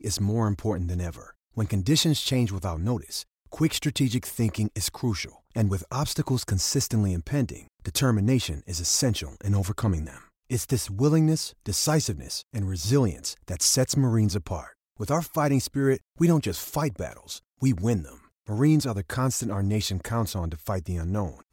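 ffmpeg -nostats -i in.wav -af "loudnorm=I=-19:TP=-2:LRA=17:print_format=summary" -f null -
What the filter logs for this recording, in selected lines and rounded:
Input Integrated:    -26.3 LUFS
Input True Peak:      -9.9 dBTP
Input LRA:             2.0 LU
Input Threshold:     -36.5 LUFS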